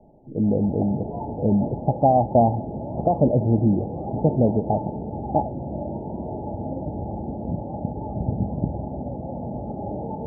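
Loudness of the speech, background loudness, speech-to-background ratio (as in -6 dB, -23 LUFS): -22.5 LUFS, -31.0 LUFS, 8.5 dB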